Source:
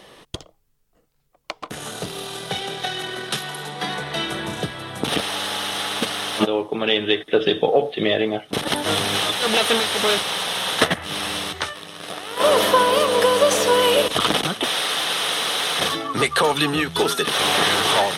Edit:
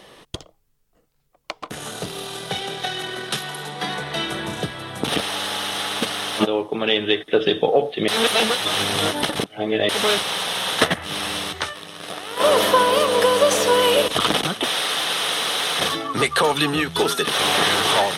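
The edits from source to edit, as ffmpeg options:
ffmpeg -i in.wav -filter_complex "[0:a]asplit=3[link_01][link_02][link_03];[link_01]atrim=end=8.082[link_04];[link_02]atrim=start=8.078:end=9.892,asetpts=PTS-STARTPTS,areverse[link_05];[link_03]atrim=start=9.888[link_06];[link_04][link_05]acrossfade=duration=0.004:curve1=hsin:curve2=hsin[link_07];[link_07][link_06]acrossfade=duration=0.004:curve1=hsin:curve2=hsin" out.wav

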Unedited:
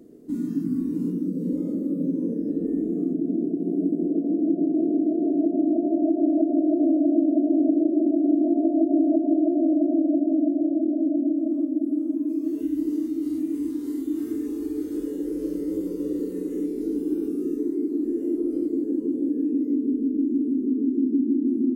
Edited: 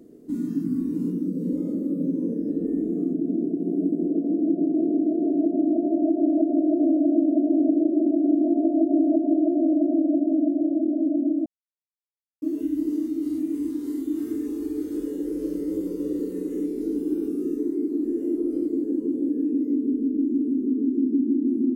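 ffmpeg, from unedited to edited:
ffmpeg -i in.wav -filter_complex "[0:a]asplit=3[link_01][link_02][link_03];[link_01]atrim=end=11.46,asetpts=PTS-STARTPTS,afade=type=out:start_time=11.456:duration=0.004:curve=hsin[link_04];[link_02]atrim=start=11.46:end=12.42,asetpts=PTS-STARTPTS,volume=0[link_05];[link_03]atrim=start=12.42,asetpts=PTS-STARTPTS,afade=type=in:duration=0.004:curve=hsin[link_06];[link_04][link_05][link_06]concat=n=3:v=0:a=1" out.wav

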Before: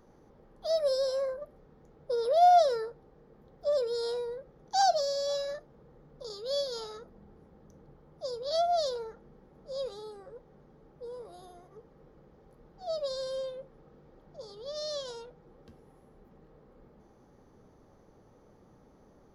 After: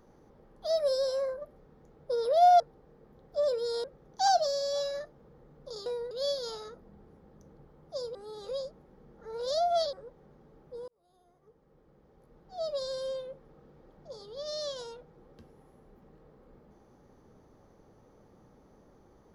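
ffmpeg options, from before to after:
ffmpeg -i in.wav -filter_complex "[0:a]asplit=8[link_01][link_02][link_03][link_04][link_05][link_06][link_07][link_08];[link_01]atrim=end=2.602[link_09];[link_02]atrim=start=2.888:end=4.132[link_10];[link_03]atrim=start=4.378:end=6.402[link_11];[link_04]atrim=start=4.128:end=4.382[link_12];[link_05]atrim=start=6.398:end=8.442[link_13];[link_06]atrim=start=8.438:end=10.222,asetpts=PTS-STARTPTS,areverse[link_14];[link_07]atrim=start=10.218:end=11.17,asetpts=PTS-STARTPTS,afade=type=out:start_time=0.948:duration=0.004:curve=hsin[link_15];[link_08]atrim=start=11.17,asetpts=PTS-STARTPTS,afade=type=in:duration=1.87[link_16];[link_09][link_10]acrossfade=duration=0.004:curve1=hsin:curve2=hsin[link_17];[link_17][link_11]acrossfade=duration=0.004:curve1=hsin:curve2=hsin[link_18];[link_18][link_12]acrossfade=duration=0.004:curve1=hsin:curve2=hsin[link_19];[link_19][link_13]acrossfade=duration=0.004:curve1=hsin:curve2=hsin[link_20];[link_20][link_14]acrossfade=duration=0.004:curve1=hsin:curve2=hsin[link_21];[link_15][link_16]concat=n=2:v=0:a=1[link_22];[link_21][link_22]acrossfade=duration=0.004:curve1=hsin:curve2=hsin" out.wav

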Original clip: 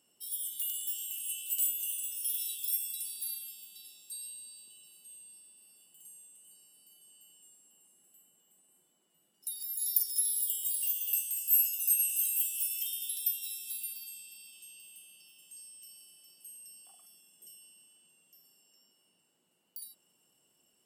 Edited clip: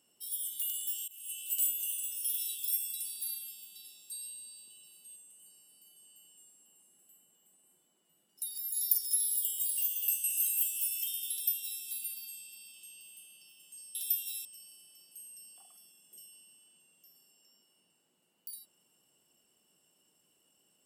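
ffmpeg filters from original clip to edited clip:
ffmpeg -i in.wav -filter_complex "[0:a]asplit=6[link_01][link_02][link_03][link_04][link_05][link_06];[link_01]atrim=end=1.08,asetpts=PTS-STARTPTS,afade=type=out:start_time=1.076:duration=0.004:curve=hsin:silence=0.0794328[link_07];[link_02]atrim=start=1.08:end=5.162,asetpts=PTS-STARTPTS,afade=type=in:duration=0.56:curve=qsin:silence=0.0794328[link_08];[link_03]atrim=start=6.208:end=11.292[link_09];[link_04]atrim=start=12.028:end=15.742[link_10];[link_05]atrim=start=13.108:end=13.612[link_11];[link_06]atrim=start=15.738[link_12];[link_07][link_08]concat=n=2:v=0:a=1[link_13];[link_13][link_09]acrossfade=duration=0.004:curve1=hsin:curve2=hsin[link_14];[link_14][link_10]acrossfade=duration=0.004:curve1=hsin:curve2=hsin[link_15];[link_15][link_11]acrossfade=duration=0.004:curve1=hsin:curve2=hsin[link_16];[link_16][link_12]acrossfade=duration=0.004:curve1=hsin:curve2=hsin" out.wav

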